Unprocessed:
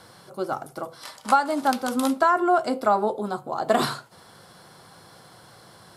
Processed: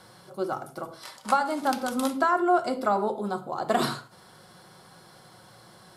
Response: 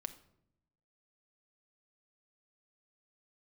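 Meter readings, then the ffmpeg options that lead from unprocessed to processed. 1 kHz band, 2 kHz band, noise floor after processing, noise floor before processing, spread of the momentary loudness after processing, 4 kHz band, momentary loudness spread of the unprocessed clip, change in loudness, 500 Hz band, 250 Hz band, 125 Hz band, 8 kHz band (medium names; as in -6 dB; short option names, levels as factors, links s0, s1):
-3.5 dB, -2.5 dB, -53 dBFS, -51 dBFS, 15 LU, -2.5 dB, 16 LU, -3.0 dB, -3.0 dB, -2.5 dB, -1.0 dB, -2.5 dB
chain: -filter_complex "[1:a]atrim=start_sample=2205,afade=t=out:st=0.2:d=0.01,atrim=end_sample=9261[s0];[0:a][s0]afir=irnorm=-1:irlink=0"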